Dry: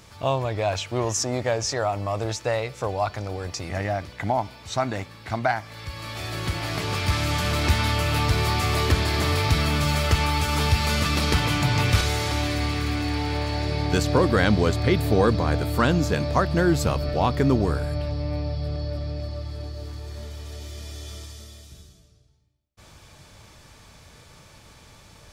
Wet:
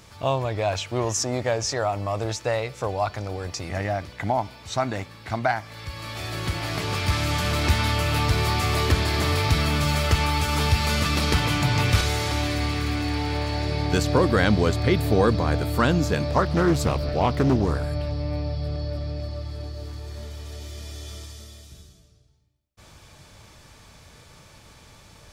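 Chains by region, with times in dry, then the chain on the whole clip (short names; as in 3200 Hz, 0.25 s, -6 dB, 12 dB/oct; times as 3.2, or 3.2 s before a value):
16.31–17.85 short-mantissa float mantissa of 8-bit + Doppler distortion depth 0.39 ms
whole clip: dry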